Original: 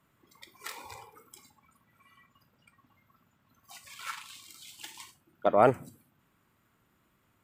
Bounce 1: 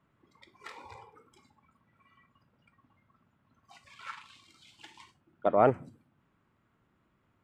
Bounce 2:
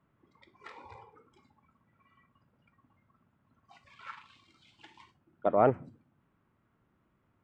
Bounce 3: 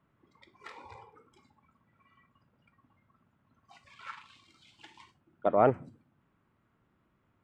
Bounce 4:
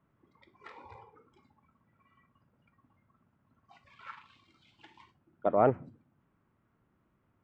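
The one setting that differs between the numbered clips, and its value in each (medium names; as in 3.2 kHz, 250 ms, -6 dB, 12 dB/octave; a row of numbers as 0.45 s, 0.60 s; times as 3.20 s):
tape spacing loss, at 10 kHz: 21 dB, 37 dB, 29 dB, 46 dB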